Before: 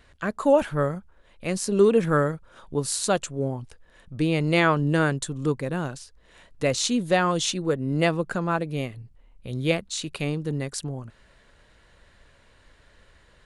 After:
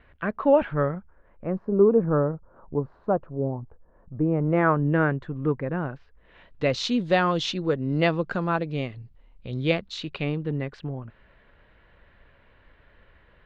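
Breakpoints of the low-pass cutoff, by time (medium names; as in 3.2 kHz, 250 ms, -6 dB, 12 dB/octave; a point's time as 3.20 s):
low-pass 24 dB/octave
0.84 s 2.7 kHz
1.68 s 1.1 kHz
4.23 s 1.1 kHz
4.89 s 2.1 kHz
5.94 s 2.1 kHz
6.78 s 4.6 kHz
9.84 s 4.6 kHz
10.59 s 2.9 kHz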